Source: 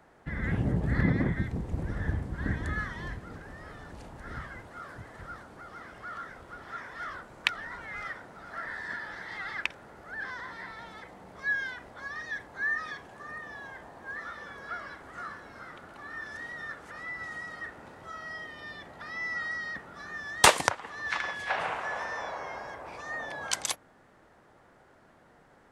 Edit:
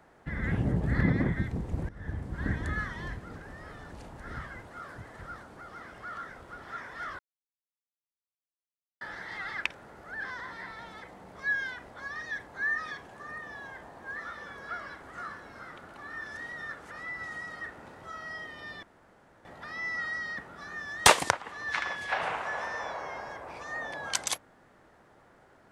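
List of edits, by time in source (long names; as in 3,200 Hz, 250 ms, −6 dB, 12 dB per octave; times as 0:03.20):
0:01.89–0:02.38: fade in, from −18.5 dB
0:07.19–0:09.01: silence
0:18.83: splice in room tone 0.62 s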